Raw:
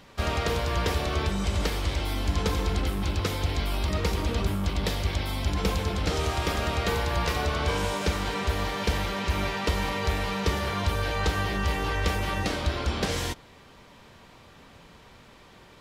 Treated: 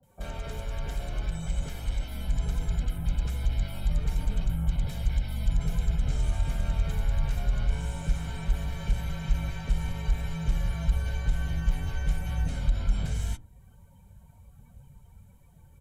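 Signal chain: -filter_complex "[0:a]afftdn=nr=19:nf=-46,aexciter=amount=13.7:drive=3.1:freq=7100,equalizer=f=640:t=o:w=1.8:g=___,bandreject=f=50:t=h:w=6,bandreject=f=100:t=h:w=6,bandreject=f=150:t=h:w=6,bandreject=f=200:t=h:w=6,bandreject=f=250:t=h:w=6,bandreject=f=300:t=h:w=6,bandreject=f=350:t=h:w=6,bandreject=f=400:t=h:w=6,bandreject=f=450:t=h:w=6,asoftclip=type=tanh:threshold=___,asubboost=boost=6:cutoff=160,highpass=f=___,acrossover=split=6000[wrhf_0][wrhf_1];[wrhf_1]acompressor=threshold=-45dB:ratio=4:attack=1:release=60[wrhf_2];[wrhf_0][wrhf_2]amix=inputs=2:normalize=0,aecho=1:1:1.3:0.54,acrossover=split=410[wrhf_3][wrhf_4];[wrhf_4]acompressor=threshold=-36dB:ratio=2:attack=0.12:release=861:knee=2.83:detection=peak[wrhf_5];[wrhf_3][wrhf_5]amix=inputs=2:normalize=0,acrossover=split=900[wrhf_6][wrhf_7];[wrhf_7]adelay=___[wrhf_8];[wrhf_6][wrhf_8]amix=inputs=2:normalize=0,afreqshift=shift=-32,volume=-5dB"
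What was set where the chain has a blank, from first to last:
2.5, -22.5dB, 81, 30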